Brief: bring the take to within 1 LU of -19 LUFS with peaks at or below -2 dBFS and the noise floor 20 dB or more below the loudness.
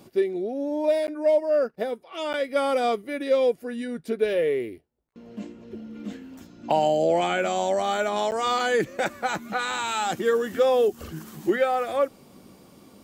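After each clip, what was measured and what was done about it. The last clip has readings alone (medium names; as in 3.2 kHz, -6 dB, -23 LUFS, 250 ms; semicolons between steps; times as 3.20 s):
dropouts 3; longest dropout 9.4 ms; loudness -25.0 LUFS; peak level -10.0 dBFS; loudness target -19.0 LUFS
-> interpolate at 1.07/2.33/8.31 s, 9.4 ms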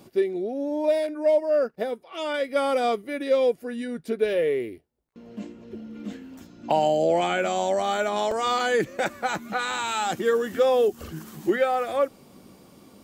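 dropouts 0; loudness -25.0 LUFS; peak level -10.0 dBFS; loudness target -19.0 LUFS
-> trim +6 dB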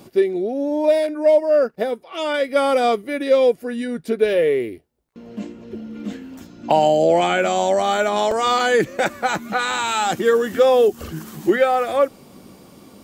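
loudness -19.0 LUFS; peak level -4.0 dBFS; noise floor -49 dBFS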